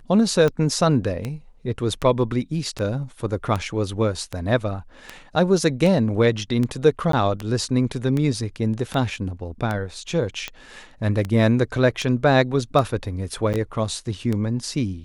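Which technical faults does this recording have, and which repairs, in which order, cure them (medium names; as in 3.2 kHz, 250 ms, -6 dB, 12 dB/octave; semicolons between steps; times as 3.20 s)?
tick 78 rpm -13 dBFS
7.12–7.13 s: dropout 13 ms
13.53–13.54 s: dropout 8.7 ms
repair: de-click; interpolate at 7.12 s, 13 ms; interpolate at 13.53 s, 8.7 ms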